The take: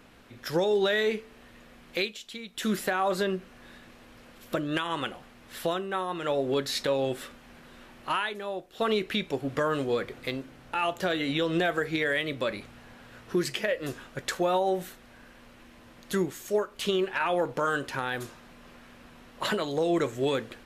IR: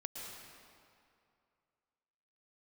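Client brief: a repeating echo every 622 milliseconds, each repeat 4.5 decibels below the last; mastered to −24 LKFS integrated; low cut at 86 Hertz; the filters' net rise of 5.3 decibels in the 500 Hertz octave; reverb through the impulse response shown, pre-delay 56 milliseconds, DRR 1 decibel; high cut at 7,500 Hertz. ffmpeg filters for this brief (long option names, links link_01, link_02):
-filter_complex "[0:a]highpass=86,lowpass=7500,equalizer=frequency=500:width_type=o:gain=6.5,aecho=1:1:622|1244|1866|2488|3110|3732|4354|4976|5598:0.596|0.357|0.214|0.129|0.0772|0.0463|0.0278|0.0167|0.01,asplit=2[link_01][link_02];[1:a]atrim=start_sample=2205,adelay=56[link_03];[link_02][link_03]afir=irnorm=-1:irlink=0,volume=0dB[link_04];[link_01][link_04]amix=inputs=2:normalize=0,volume=-1dB"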